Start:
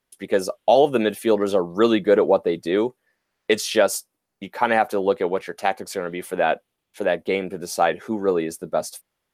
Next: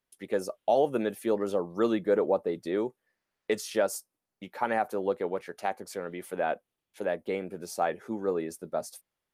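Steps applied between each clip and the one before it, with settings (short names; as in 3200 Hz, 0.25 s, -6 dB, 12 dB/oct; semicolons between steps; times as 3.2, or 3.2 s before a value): dynamic EQ 3300 Hz, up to -7 dB, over -40 dBFS, Q 1; gain -8.5 dB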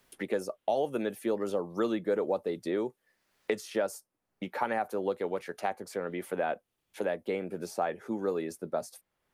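three-band squash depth 70%; gain -2.5 dB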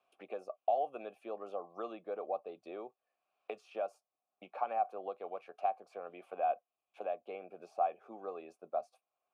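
vowel filter a; gain +3 dB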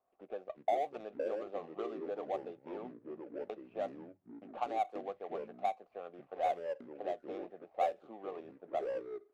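median filter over 25 samples; echoes that change speed 0.286 s, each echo -5 st, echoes 2, each echo -6 dB; low-pass opened by the level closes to 1800 Hz, open at -29.5 dBFS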